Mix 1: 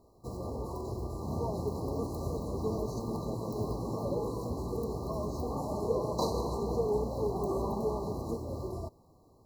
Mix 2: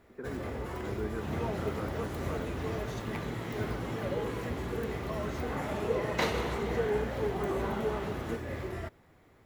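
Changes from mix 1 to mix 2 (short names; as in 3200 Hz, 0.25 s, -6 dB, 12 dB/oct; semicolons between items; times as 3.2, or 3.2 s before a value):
speech: entry -1.65 s; master: remove brick-wall FIR band-stop 1200–3900 Hz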